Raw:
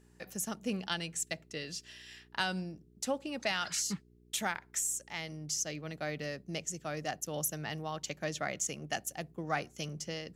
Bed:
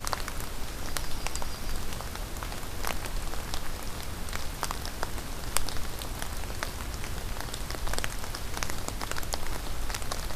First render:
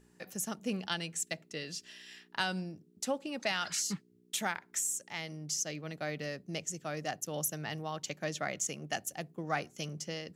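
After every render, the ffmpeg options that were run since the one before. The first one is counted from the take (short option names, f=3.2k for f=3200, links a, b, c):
-af "bandreject=f=60:t=h:w=4,bandreject=f=120:t=h:w=4"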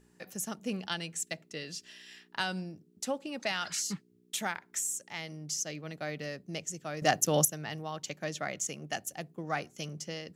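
-filter_complex "[0:a]asplit=3[a][b][c];[a]atrim=end=7.022[d];[b]atrim=start=7.018:end=7.452,asetpts=PTS-STARTPTS,volume=11dB[e];[c]atrim=start=7.448[f];[d][e]acrossfade=d=0.004:c1=hsin:c2=hsin[g];[g][f]acrossfade=d=0.004:c1=hsin:c2=hsin"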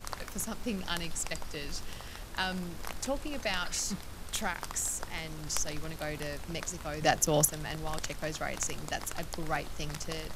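-filter_complex "[1:a]volume=-8.5dB[a];[0:a][a]amix=inputs=2:normalize=0"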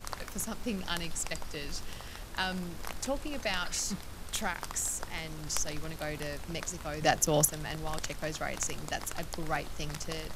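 -af anull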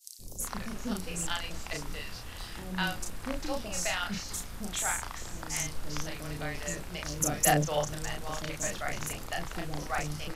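-filter_complex "[0:a]asplit=2[a][b];[b]adelay=34,volume=-3dB[c];[a][c]amix=inputs=2:normalize=0,acrossover=split=490|5000[d][e][f];[d]adelay=190[g];[e]adelay=400[h];[g][h][f]amix=inputs=3:normalize=0"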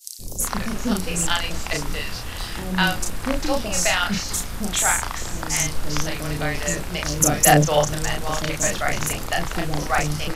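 -af "volume=11.5dB,alimiter=limit=-2dB:level=0:latency=1"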